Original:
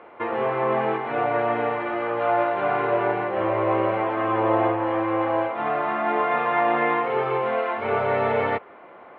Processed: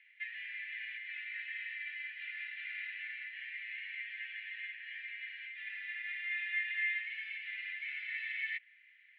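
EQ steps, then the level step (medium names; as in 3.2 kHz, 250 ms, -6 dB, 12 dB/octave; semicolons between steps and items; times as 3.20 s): steep high-pass 1.8 kHz 96 dB/octave; distance through air 63 m; treble shelf 2.9 kHz -10 dB; +1.0 dB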